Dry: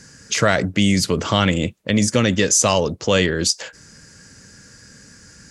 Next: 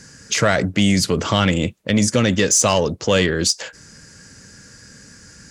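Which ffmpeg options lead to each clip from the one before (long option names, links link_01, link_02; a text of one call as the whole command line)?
ffmpeg -i in.wav -af "acontrast=37,volume=-4dB" out.wav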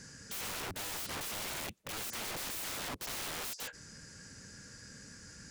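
ffmpeg -i in.wav -af "alimiter=limit=-13dB:level=0:latency=1:release=24,aeval=exprs='(mod(22.4*val(0)+1,2)-1)/22.4':channel_layout=same,volume=-8dB" out.wav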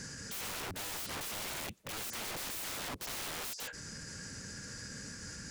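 ffmpeg -i in.wav -af "alimiter=level_in=18.5dB:limit=-24dB:level=0:latency=1:release=36,volume=-18.5dB,volume=7dB" out.wav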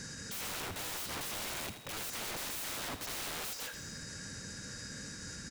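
ffmpeg -i in.wav -filter_complex "[0:a]asplit=7[link_01][link_02][link_03][link_04][link_05][link_06][link_07];[link_02]adelay=81,afreqshift=31,volume=-10dB[link_08];[link_03]adelay=162,afreqshift=62,volume=-15.7dB[link_09];[link_04]adelay=243,afreqshift=93,volume=-21.4dB[link_10];[link_05]adelay=324,afreqshift=124,volume=-27dB[link_11];[link_06]adelay=405,afreqshift=155,volume=-32.7dB[link_12];[link_07]adelay=486,afreqshift=186,volume=-38.4dB[link_13];[link_01][link_08][link_09][link_10][link_11][link_12][link_13]amix=inputs=7:normalize=0,aeval=exprs='val(0)+0.00126*sin(2*PI*3800*n/s)':channel_layout=same" out.wav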